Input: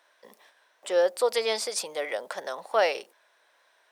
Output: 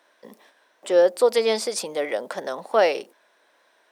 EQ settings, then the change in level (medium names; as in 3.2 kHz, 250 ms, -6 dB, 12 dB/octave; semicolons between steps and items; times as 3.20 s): peaking EQ 260 Hz +5.5 dB 1.1 oct; bass shelf 350 Hz +10.5 dB; +1.5 dB